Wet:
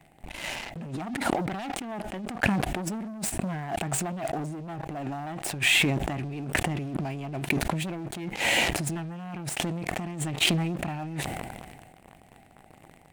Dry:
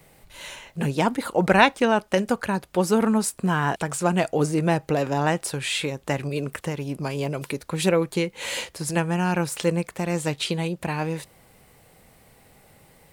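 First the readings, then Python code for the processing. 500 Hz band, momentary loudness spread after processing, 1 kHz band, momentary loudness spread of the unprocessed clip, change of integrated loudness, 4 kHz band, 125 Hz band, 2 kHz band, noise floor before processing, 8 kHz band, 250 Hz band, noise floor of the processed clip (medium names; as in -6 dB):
-10.5 dB, 12 LU, -7.5 dB, 9 LU, -5.0 dB, +1.5 dB, -4.5 dB, -1.5 dB, -56 dBFS, -1.0 dB, -6.5 dB, -56 dBFS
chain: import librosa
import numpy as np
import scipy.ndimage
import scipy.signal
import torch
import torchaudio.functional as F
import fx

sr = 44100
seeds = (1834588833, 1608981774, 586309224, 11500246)

y = fx.self_delay(x, sr, depth_ms=0.17)
y = fx.curve_eq(y, sr, hz=(130.0, 330.0, 500.0, 730.0, 1100.0, 1800.0, 2600.0, 4900.0, 8200.0, 13000.0), db=(0, -2, -18, 0, -21, -11, -11, -23, -16, -23))
y = fx.leveller(y, sr, passes=3)
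y = fx.over_compress(y, sr, threshold_db=-29.0, ratio=-1.0)
y = fx.low_shelf(y, sr, hz=220.0, db=-10.5)
y = fx.sustainer(y, sr, db_per_s=32.0)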